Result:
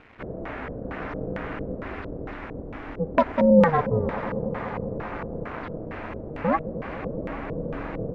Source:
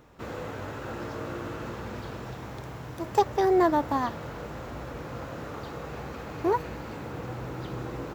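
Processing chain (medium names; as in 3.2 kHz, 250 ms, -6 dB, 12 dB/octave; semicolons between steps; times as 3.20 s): bit crusher 9-bit; on a send: echo with a slow build-up 99 ms, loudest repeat 5, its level -18 dB; on the sum: LFO low-pass square 2.2 Hz 340–2100 Hz; ring modulator 160 Hz; trim +4 dB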